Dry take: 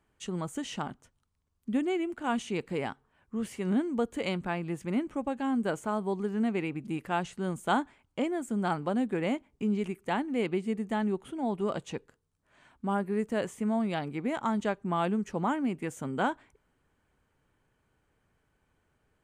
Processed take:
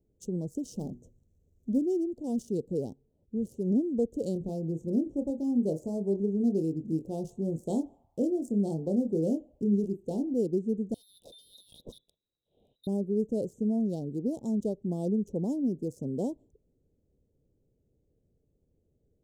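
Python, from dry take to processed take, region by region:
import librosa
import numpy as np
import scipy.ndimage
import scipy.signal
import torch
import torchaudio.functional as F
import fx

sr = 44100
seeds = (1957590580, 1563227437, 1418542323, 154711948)

y = fx.chain(x, sr, fx.law_mismatch(coded='mu'),
    fx.hum_notches(base_hz=60, count=6), at=(0.76, 1.79))
y = fx.chain(y, sr, fx.doubler(ms=25.0, db=-6.0),
    fx.echo_banded(ms=78, feedback_pct=77, hz=1400.0, wet_db=-17.0), at=(4.33, 10.34))
y = fx.chain(y, sr, fx.freq_invert(carrier_hz=3900),
    fx.over_compress(threshold_db=-40.0, ratio=-1.0), at=(10.94, 12.87))
y = fx.wiener(y, sr, points=9)
y = scipy.signal.sosfilt(scipy.signal.cheby1(3, 1.0, [510.0, 5400.0], 'bandstop', fs=sr, output='sos'), y)
y = y * 10.0 ** (2.5 / 20.0)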